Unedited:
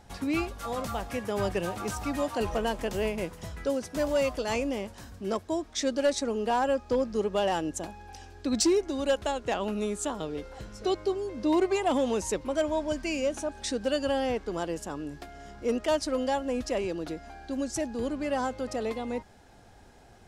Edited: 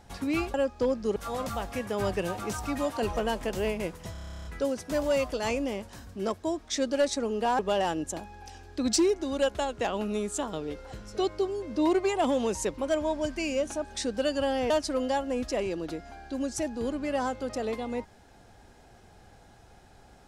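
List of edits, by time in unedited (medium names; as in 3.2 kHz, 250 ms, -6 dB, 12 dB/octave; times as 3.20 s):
3.50 s: stutter 0.03 s, 12 plays
6.64–7.26 s: move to 0.54 s
14.37–15.88 s: delete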